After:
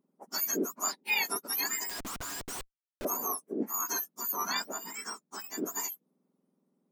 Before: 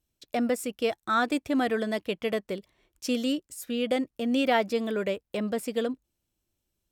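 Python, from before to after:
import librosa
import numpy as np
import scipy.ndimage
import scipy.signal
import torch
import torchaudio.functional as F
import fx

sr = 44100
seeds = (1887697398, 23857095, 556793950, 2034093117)

y = fx.octave_mirror(x, sr, pivot_hz=1800.0)
y = fx.schmitt(y, sr, flips_db=-50.0, at=(1.89, 3.05))
y = fx.high_shelf(y, sr, hz=4100.0, db=-9.0, at=(4.32, 5.66))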